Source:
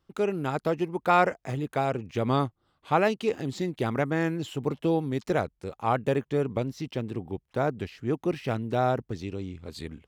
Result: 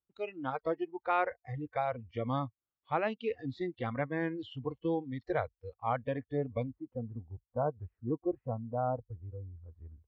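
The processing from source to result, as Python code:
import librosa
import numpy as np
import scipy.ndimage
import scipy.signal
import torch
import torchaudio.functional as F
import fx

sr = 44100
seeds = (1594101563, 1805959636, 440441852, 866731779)

y = fx.lowpass(x, sr, hz=fx.steps((0.0, 3300.0), (6.71, 1300.0)), slope=24)
y = fx.noise_reduce_blind(y, sr, reduce_db=22)
y = fx.rider(y, sr, range_db=3, speed_s=0.5)
y = F.gain(torch.from_numpy(y), -6.0).numpy()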